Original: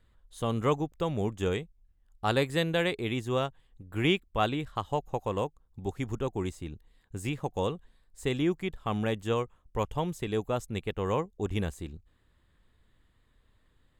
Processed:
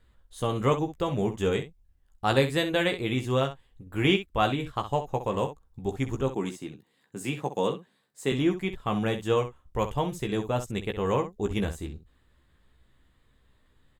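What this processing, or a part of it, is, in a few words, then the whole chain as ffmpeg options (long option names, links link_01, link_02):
slapback doubling: -filter_complex "[0:a]asettb=1/sr,asplit=3[link_01][link_02][link_03];[link_01]atrim=end=6.314[link_04];[link_02]atrim=start=6.31:end=8.32,asetpts=PTS-STARTPTS,afade=type=in:duration=0.004:curve=qsin,afade=type=out:start_time=2.006:duration=0.004:curve=qsin,highpass=frequency=150:width=0.5412,highpass=frequency=150:width=1.3066[link_05];[link_03]atrim=start=8.316[link_06];[link_04][link_05]acrossfade=duration=0.004:curve1=hsin:curve2=qsin[link_07];[link_07][link_06]acrossfade=duration=0.004:curve1=qsin:curve2=hsin,asplit=3[link_08][link_09][link_10];[link_09]adelay=15,volume=-6dB[link_11];[link_10]adelay=64,volume=-11dB[link_12];[link_08][link_11][link_12]amix=inputs=3:normalize=0,volume=2dB"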